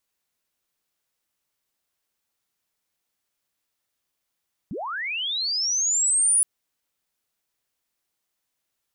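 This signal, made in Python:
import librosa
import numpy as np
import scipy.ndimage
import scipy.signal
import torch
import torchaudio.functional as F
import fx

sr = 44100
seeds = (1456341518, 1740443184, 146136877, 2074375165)

y = fx.chirp(sr, length_s=1.72, from_hz=140.0, to_hz=9900.0, law='linear', from_db=-29.0, to_db=-15.5)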